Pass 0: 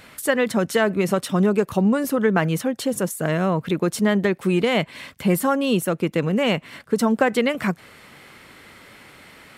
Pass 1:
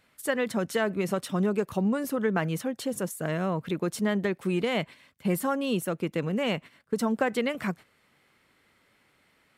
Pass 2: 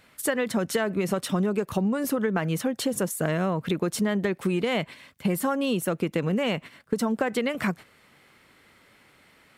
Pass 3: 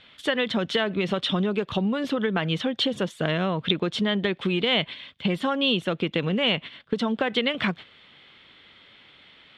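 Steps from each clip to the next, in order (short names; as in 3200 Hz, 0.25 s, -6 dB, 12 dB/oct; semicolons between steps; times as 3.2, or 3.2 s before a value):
gate -33 dBFS, range -12 dB; gain -7.5 dB
compressor, threshold -30 dBFS, peak gain reduction 9.5 dB; gain +8 dB
synth low-pass 3400 Hz, resonance Q 6.2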